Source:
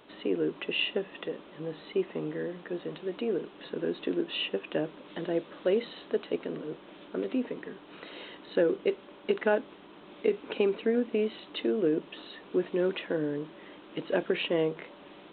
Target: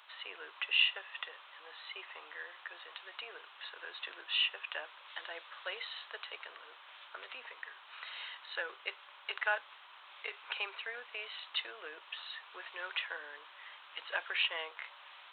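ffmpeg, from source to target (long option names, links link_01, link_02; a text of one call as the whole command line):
ffmpeg -i in.wav -af "highpass=frequency=980:width=0.5412,highpass=frequency=980:width=1.3066,volume=2dB" out.wav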